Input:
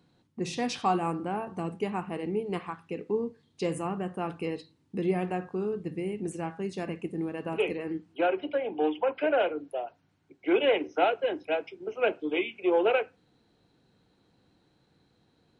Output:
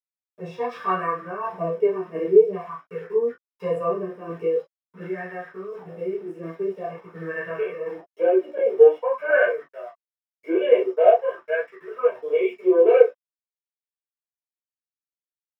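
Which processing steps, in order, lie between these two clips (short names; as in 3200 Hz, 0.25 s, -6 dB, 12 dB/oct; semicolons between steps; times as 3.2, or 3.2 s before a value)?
HPF 44 Hz 24 dB/oct; comb 1.8 ms, depth 91%; harmonic-percussive split percussive -13 dB; 4.44–6.92 compressor 2.5:1, threshold -36 dBFS, peak gain reduction 9 dB; sample gate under -46.5 dBFS; tremolo saw down 1.4 Hz, depth 50%; chorus voices 2, 0.8 Hz, delay 14 ms, depth 4.1 ms; reverb, pre-delay 3 ms, DRR -5.5 dB; LFO bell 0.47 Hz 320–1800 Hz +14 dB; gain -9 dB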